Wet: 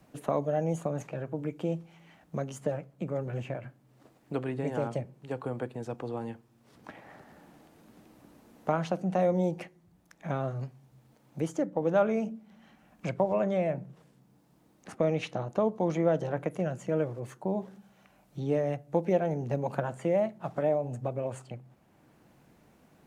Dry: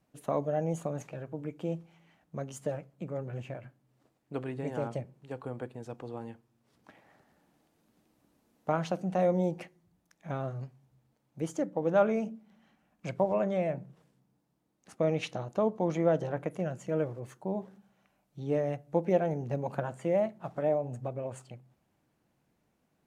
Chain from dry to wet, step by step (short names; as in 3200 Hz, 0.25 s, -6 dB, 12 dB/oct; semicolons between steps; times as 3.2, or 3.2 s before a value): three-band squash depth 40%; gain +2 dB